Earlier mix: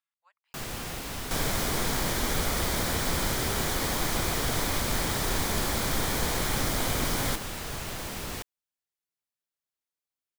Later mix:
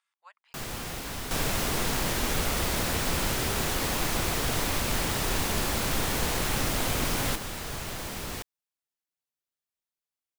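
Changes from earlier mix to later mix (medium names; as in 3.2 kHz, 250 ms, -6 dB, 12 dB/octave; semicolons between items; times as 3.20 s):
speech +12.0 dB; second sound: remove Butterworth band-stop 2.7 kHz, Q 6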